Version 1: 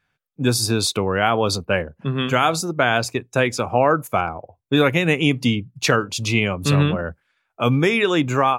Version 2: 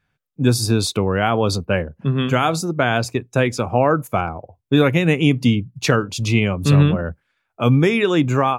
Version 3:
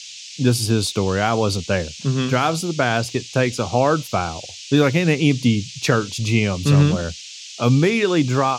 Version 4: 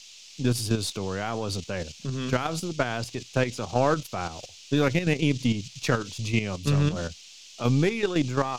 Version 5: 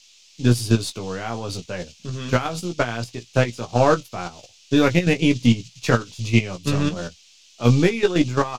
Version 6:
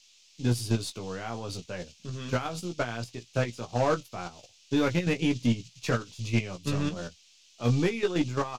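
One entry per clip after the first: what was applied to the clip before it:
low shelf 380 Hz +7.5 dB; gain -2 dB
band noise 2500–6900 Hz -36 dBFS; gain -1 dB
half-wave gain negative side -3 dB; level quantiser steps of 9 dB; gain -3 dB
doubler 17 ms -5.5 dB; upward expander 1.5:1, over -41 dBFS; gain +6.5 dB
soft clip -8.5 dBFS, distortion -16 dB; gain -7 dB

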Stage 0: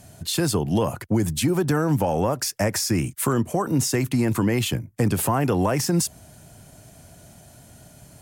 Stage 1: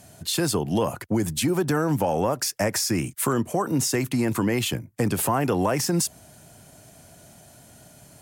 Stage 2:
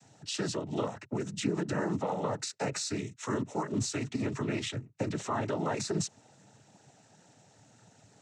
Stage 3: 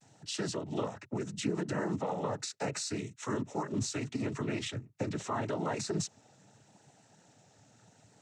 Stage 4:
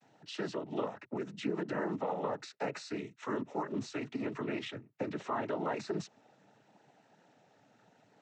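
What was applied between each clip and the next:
low shelf 120 Hz -9 dB
noise vocoder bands 12; gain -8.5 dB
vibrato 0.76 Hz 35 cents; gain -2 dB
BPF 220–3000 Hz

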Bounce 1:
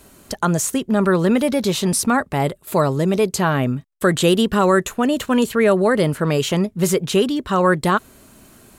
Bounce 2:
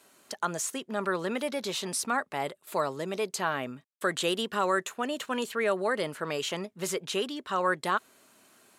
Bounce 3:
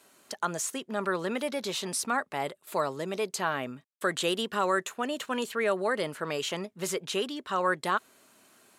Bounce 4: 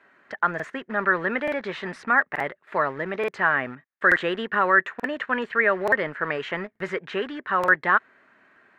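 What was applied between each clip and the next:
weighting filter A; gain -9 dB
nothing audible
in parallel at -9.5 dB: requantised 6-bit, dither none; on the sum: synth low-pass 1800 Hz, resonance Q 4.5; crackling interface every 0.88 s, samples 2048, repeat, from 0.55

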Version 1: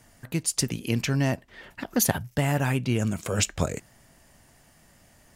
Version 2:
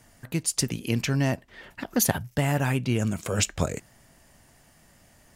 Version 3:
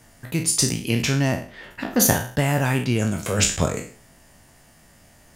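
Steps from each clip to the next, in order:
nothing audible
spectral trails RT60 0.44 s; gain +3 dB

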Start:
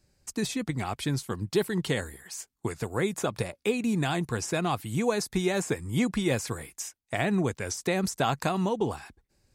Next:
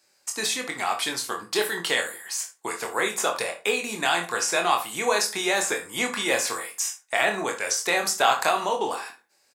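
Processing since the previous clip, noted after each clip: HPF 700 Hz 12 dB/oct; doubler 24 ms -5.5 dB; reverb RT60 0.35 s, pre-delay 27 ms, DRR 7.5 dB; gain +8 dB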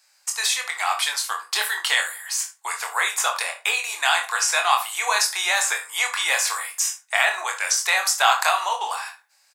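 HPF 790 Hz 24 dB/oct; gain +4.5 dB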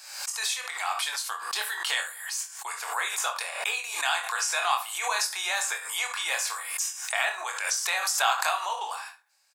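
notch 2000 Hz, Q 15; backwards sustainer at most 65 dB/s; gain -7 dB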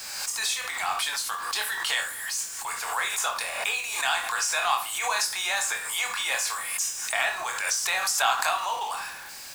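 zero-crossing step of -35.5 dBFS

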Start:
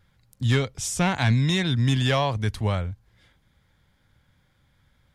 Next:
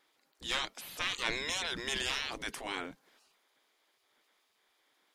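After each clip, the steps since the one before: spectral gate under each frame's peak -20 dB weak; transient shaper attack -3 dB, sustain +5 dB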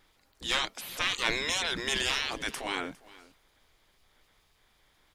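added noise brown -75 dBFS; echo 0.405 s -21 dB; gain +5 dB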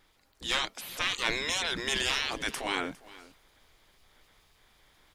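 vocal rider 2 s

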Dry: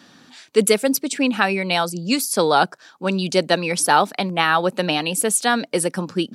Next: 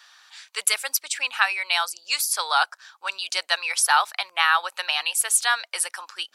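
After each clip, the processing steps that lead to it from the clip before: HPF 970 Hz 24 dB/oct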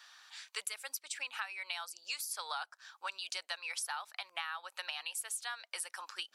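compressor 10:1, threshold -31 dBFS, peak gain reduction 18 dB; gain -5.5 dB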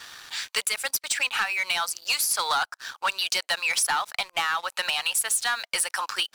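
sample leveller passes 3; gain +6 dB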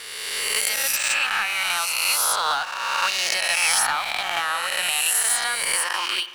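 spectral swells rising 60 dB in 1.85 s; spring tank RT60 1.2 s, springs 49 ms, DRR 14 dB; gain -2.5 dB

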